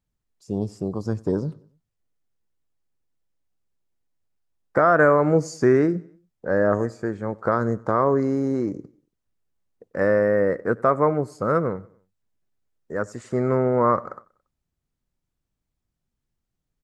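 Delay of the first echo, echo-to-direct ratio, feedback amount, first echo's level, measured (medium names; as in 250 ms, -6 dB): 94 ms, -23.0 dB, 48%, -24.0 dB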